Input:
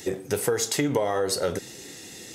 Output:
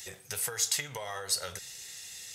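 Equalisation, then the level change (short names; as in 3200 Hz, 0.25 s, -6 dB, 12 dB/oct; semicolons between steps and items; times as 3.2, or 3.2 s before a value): passive tone stack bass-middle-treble 10-0-10; 0.0 dB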